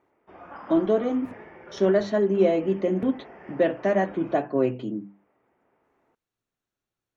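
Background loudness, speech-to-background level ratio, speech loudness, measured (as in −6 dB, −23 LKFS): −44.5 LKFS, 20.0 dB, −24.5 LKFS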